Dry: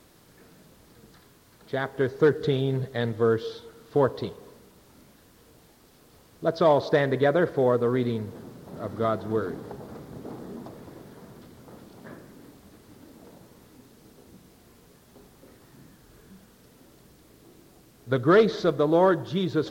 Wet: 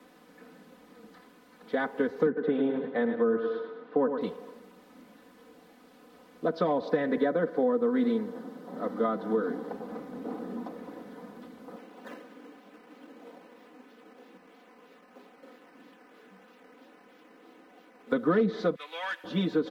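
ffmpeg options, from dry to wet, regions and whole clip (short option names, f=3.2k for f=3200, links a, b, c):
-filter_complex "[0:a]asettb=1/sr,asplit=3[a][b][c];[a]atrim=end=2.264[d];[b]atrim=start=2.26:end=4.21,asetpts=PTS-STARTPTS,afade=t=in:d=0.004:c=qsin,afade=t=out:st=1.946:d=0.004:c=qsin,highpass=150,lowpass=2.2k,aecho=1:1:106|212|318|424|530|636:0.355|0.177|0.0887|0.0444|0.0222|0.0111,atrim=end_sample=85995[e];[c]atrim=start=4.206[f];[d][e]acrossfade=d=0.004:c1=hsin:c2=qsin[g];[g][f]acrossfade=d=0.004:c1=qsin:c2=hsin,asettb=1/sr,asplit=3[h][i][j];[h]atrim=end=7.174[k];[i]atrim=start=7.17:end=9.7,asetpts=PTS-STARTPTS,afade=t=in:d=0.004:c=qsin,afade=t=out:st=2.526:d=0.004:c=qsin,highpass=150,equalizer=f=2.5k:t=o:w=0.23:g=-6.5[l];[j]atrim=start=9.696[m];[k][l]acrossfade=d=0.004:c1=hsin:c2=qsin[n];[n][m]acrossfade=d=0.004:c1=qsin:c2=hsin,asettb=1/sr,asplit=3[o][p][q];[o]atrim=end=11.764[r];[p]atrim=start=11.76:end=18.12,asetpts=PTS-STARTPTS,afade=t=in:d=0.004:c=qsin,afade=t=out:st=6.356:d=0.004:c=qsin,highpass=300,acrusher=samples=9:mix=1:aa=0.000001:lfo=1:lforange=9:lforate=3.1[s];[q]atrim=start=18.116[t];[r][s]acrossfade=d=0.004:c1=hsin:c2=qsin[u];[u][t]acrossfade=d=0.004:c1=qsin:c2=hsin,asettb=1/sr,asplit=3[v][w][x];[v]atrim=end=18.754[y];[w]atrim=start=18.75:end=19.24,asetpts=PTS-STARTPTS,afade=t=in:d=0.004:c=qsin,afade=t=out:st=0.486:d=0.004:c=qsin,highpass=f=2.4k:t=q:w=3.8,asoftclip=type=hard:threshold=-31dB[z];[x]atrim=start=19.236[aa];[y][z]acrossfade=d=0.004:c1=hsin:c2=qsin[ab];[ab][aa]acrossfade=d=0.004:c1=qsin:c2=hsin,acrossover=split=160 3100:gain=0.0891 1 0.251[ac][ad][ae];[ac][ad][ae]amix=inputs=3:normalize=0,aecho=1:1:4:0.97,acrossover=split=250[af][ag];[ag]acompressor=threshold=-25dB:ratio=10[ah];[af][ah]amix=inputs=2:normalize=0"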